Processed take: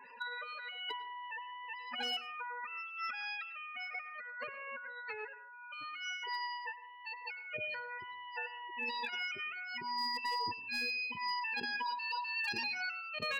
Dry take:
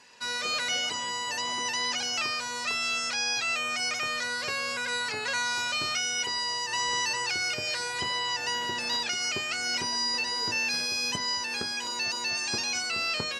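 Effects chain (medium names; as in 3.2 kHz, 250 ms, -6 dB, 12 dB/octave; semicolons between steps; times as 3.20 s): spectral contrast enhancement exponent 1.6; low-pass 2.1 kHz 12 dB/octave; spectral gate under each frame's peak -15 dB strong; compressor with a negative ratio -40 dBFS, ratio -0.5; overload inside the chain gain 30 dB; reverberation RT60 0.45 s, pre-delay 93 ms, DRR 14.5 dB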